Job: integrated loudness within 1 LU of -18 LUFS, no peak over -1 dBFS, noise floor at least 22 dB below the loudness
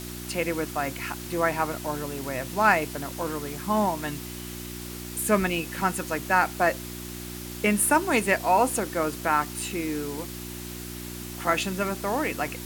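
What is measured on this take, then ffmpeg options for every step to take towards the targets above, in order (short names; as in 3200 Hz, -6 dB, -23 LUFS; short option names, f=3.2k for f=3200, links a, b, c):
hum 60 Hz; harmonics up to 360 Hz; hum level -36 dBFS; noise floor -38 dBFS; noise floor target -49 dBFS; loudness -27.0 LUFS; peak -6.5 dBFS; loudness target -18.0 LUFS
-> -af "bandreject=f=60:t=h:w=4,bandreject=f=120:t=h:w=4,bandreject=f=180:t=h:w=4,bandreject=f=240:t=h:w=4,bandreject=f=300:t=h:w=4,bandreject=f=360:t=h:w=4"
-af "afftdn=nr=11:nf=-38"
-af "volume=9dB,alimiter=limit=-1dB:level=0:latency=1"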